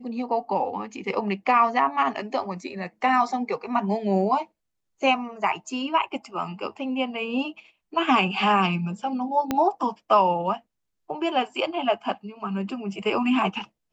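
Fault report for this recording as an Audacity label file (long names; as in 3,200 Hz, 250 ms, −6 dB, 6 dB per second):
9.510000	9.510000	click −10 dBFS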